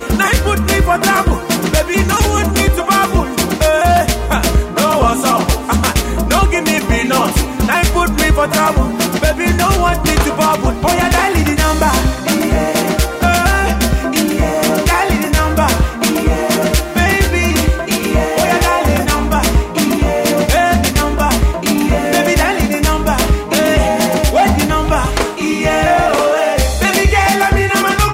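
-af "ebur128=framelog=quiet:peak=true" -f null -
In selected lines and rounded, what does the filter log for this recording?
Integrated loudness:
  I:         -13.3 LUFS
  Threshold: -23.3 LUFS
Loudness range:
  LRA:         0.7 LU
  Threshold: -33.3 LUFS
  LRA low:   -13.6 LUFS
  LRA high:  -13.0 LUFS
True peak:
  Peak:       -1.8 dBFS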